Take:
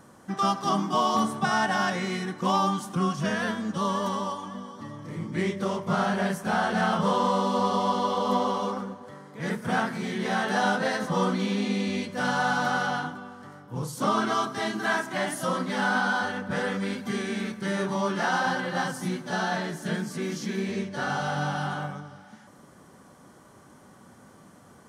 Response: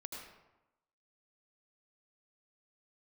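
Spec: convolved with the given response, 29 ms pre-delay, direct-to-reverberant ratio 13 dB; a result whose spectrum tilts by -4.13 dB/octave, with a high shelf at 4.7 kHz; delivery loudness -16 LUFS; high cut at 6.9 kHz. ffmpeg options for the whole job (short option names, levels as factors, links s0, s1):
-filter_complex "[0:a]lowpass=6900,highshelf=f=4700:g=-6,asplit=2[s0][s1];[1:a]atrim=start_sample=2205,adelay=29[s2];[s1][s2]afir=irnorm=-1:irlink=0,volume=0.299[s3];[s0][s3]amix=inputs=2:normalize=0,volume=3.76"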